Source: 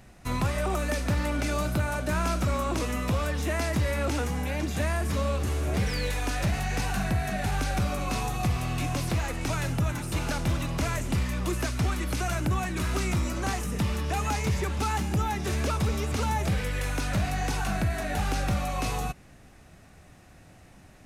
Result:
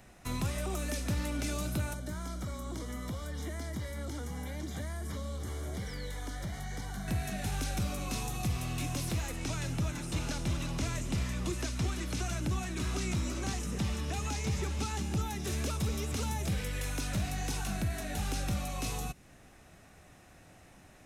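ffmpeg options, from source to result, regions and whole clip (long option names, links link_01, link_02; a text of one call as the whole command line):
ffmpeg -i in.wav -filter_complex "[0:a]asettb=1/sr,asplit=3[link_01][link_02][link_03];[link_01]atrim=end=1.934[link_04];[link_02]atrim=start=1.93:end=7.08,asetpts=PTS-STARTPTS,afade=type=in:duration=0.004:curve=qsin,afade=type=out:start_time=5.146:duration=0.004:curve=qsin,bass=frequency=250:gain=3,treble=frequency=4000:gain=-2,acrossover=split=380|3400[link_05][link_06][link_07];[link_05]acompressor=threshold=-32dB:ratio=4[link_08];[link_06]acompressor=threshold=-40dB:ratio=4[link_09];[link_07]acompressor=threshold=-49dB:ratio=4[link_10];[link_08][link_09][link_10]amix=inputs=3:normalize=0,asuperstop=centerf=2600:order=8:qfactor=5[link_11];[link_03]atrim=start=7.076[link_12];[link_04][link_11]acrossfade=duration=0.004:curve1=hsin:curve2=qsin[link_13];[link_13][link_12]acrossfade=duration=0.004:curve1=qsin:curve2=hsin,asettb=1/sr,asplit=3[link_14][link_15][link_16];[link_14]atrim=end=9.394[link_17];[link_15]atrim=start=9.39:end=15.21,asetpts=PTS-STARTPTS,afade=type=in:duration=0.004:curve=qsin,afade=type=out:start_time=5.816:duration=0.004:curve=qsin,acrossover=split=8700[link_18][link_19];[link_19]acompressor=threshold=-57dB:ratio=4:attack=1:release=60[link_20];[link_18][link_20]amix=inputs=2:normalize=0,aecho=1:1:344:0.282,atrim=end_sample=256662[link_21];[link_16]atrim=start=15.206[link_22];[link_17][link_21]acrossfade=duration=0.004:curve1=hsin:curve2=qsin[link_23];[link_23][link_22]acrossfade=duration=0.004:curve1=qsin:curve2=hsin,bandreject=frequency=4600:width=15,acrossover=split=350|3000[link_24][link_25][link_26];[link_25]acompressor=threshold=-47dB:ratio=2[link_27];[link_24][link_27][link_26]amix=inputs=3:normalize=0,bass=frequency=250:gain=-4,treble=frequency=4000:gain=1,volume=-2dB" out.wav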